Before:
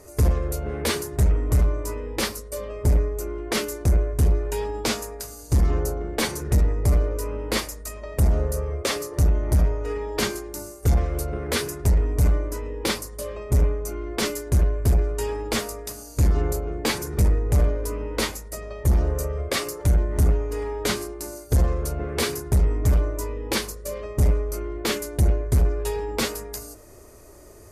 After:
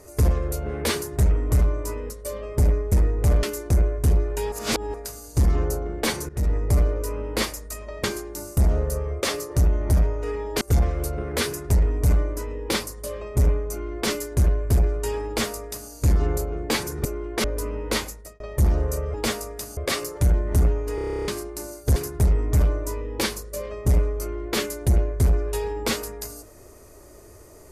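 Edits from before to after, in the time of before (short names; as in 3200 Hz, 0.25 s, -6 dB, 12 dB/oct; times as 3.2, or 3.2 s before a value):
2.1–2.37 cut
3.19–3.58 swap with 17.2–17.71
4.67–5.09 reverse
6.44–6.72 fade in, from -15.5 dB
10.23–10.76 move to 8.19
15.42–16.05 copy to 19.41
18.34–18.67 fade out
20.59 stutter in place 0.03 s, 11 plays
21.6–22.28 cut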